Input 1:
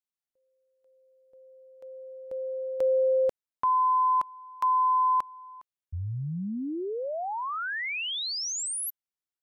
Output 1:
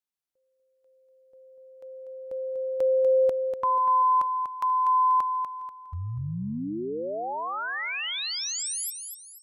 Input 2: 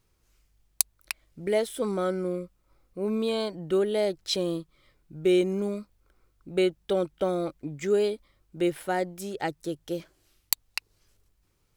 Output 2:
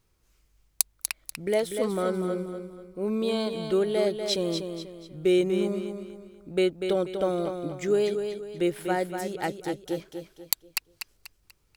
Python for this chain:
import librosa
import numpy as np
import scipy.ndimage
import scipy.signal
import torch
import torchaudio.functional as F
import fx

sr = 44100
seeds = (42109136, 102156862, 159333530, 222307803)

y = fx.echo_feedback(x, sr, ms=243, feedback_pct=37, wet_db=-7)